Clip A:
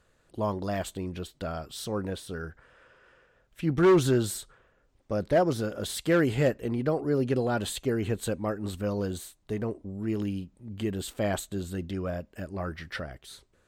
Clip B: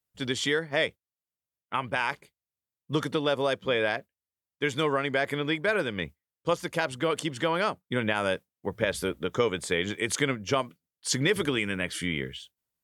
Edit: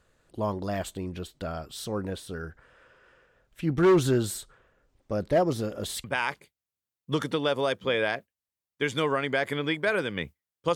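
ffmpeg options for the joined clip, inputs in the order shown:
-filter_complex "[0:a]asettb=1/sr,asplit=3[s0][s1][s2];[s0]atrim=end=5.294[s3];[s1]atrim=start=5.29:end=6.04,asetpts=PTS-STARTPTS,afade=t=in:d=0.004:c=qsin,afade=t=out:st=0.746:d=0.004:c=qsin,bandreject=f=1500:w=10[s4];[s2]atrim=start=6.036[s5];[s3][s4]acrossfade=d=0.004:c1=hsin:c2=qsin[s6];[s6][s5]acrossfade=d=0.004:c1=qsin:c2=hsin,apad=whole_dur=10.75,atrim=end=10.75,atrim=end=6.042[s7];[1:a]atrim=start=1.848:end=6.56[s8];[s7][s8]acrossfade=d=0.004:c1=hsin:c2=hsin"

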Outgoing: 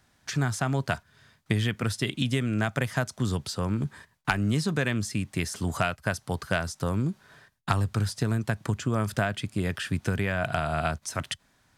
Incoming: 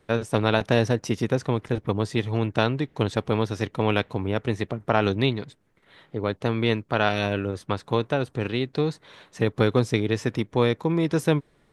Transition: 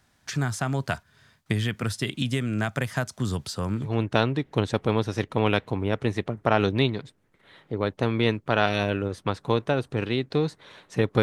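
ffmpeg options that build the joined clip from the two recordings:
-filter_complex "[0:a]apad=whole_dur=11.22,atrim=end=11.22,atrim=end=3.98,asetpts=PTS-STARTPTS[s0];[1:a]atrim=start=2.19:end=9.65,asetpts=PTS-STARTPTS[s1];[s0][s1]acrossfade=d=0.22:c1=tri:c2=tri"

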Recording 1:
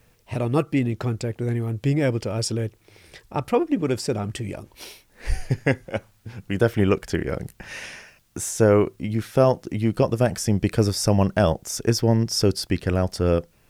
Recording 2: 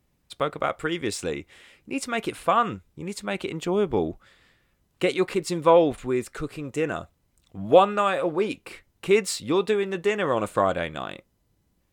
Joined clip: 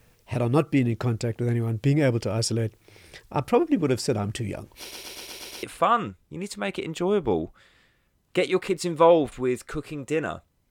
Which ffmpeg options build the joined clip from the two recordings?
-filter_complex "[0:a]apad=whole_dur=10.7,atrim=end=10.7,asplit=7[s0][s1][s2][s3][s4][s5][s6];[s0]atrim=end=4.912[s7];[s1]atrim=start=4.788:end=4.912[s8];[s2]atrim=start=4.788:end=4.912[s9];[s3]atrim=start=4.788:end=4.912[s10];[s4]atrim=start=4.788:end=4.912[s11];[s5]atrim=start=4.788:end=4.912[s12];[s6]atrim=start=4.788:end=4.912[s13];[1:a]atrim=start=2.288:end=7.36[s14];[s7][s8]acrossfade=d=0.004:c1=hsin:c2=hsin[s15];[s15][s9]acrossfade=d=0.004:c1=hsin:c2=hsin[s16];[s16][s10]acrossfade=d=0.004:c1=hsin:c2=hsin[s17];[s17][s11]acrossfade=d=0.004:c1=hsin:c2=hsin[s18];[s18][s12]acrossfade=d=0.004:c1=hsin:c2=hsin[s19];[s19][s13]acrossfade=d=0.004:c1=hsin:c2=hsin[s20];[s20][s14]acrossfade=d=0.004:c1=hsin:c2=hsin"

